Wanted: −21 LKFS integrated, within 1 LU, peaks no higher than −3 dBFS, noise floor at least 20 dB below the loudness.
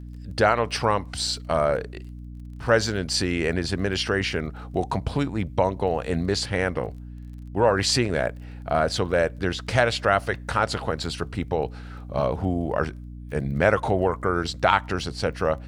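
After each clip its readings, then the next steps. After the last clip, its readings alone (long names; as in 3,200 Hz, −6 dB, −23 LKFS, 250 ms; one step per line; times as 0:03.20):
crackle rate 22 per second; mains hum 60 Hz; hum harmonics up to 300 Hz; level of the hum −35 dBFS; integrated loudness −24.5 LKFS; sample peak −3.0 dBFS; target loudness −21.0 LKFS
→ click removal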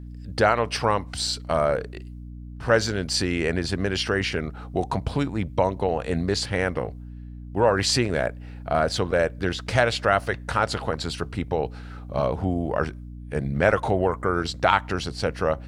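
crackle rate 0.064 per second; mains hum 60 Hz; hum harmonics up to 300 Hz; level of the hum −36 dBFS
→ mains-hum notches 60/120/180/240/300 Hz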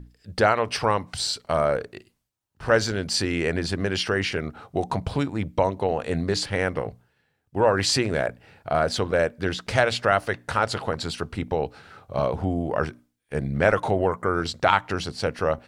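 mains hum none found; integrated loudness −25.0 LKFS; sample peak −3.5 dBFS; target loudness −21.0 LKFS
→ level +4 dB
brickwall limiter −3 dBFS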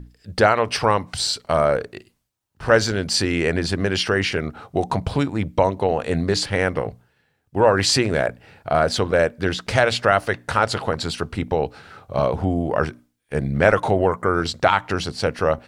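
integrated loudness −21.0 LKFS; sample peak −3.0 dBFS; background noise floor −68 dBFS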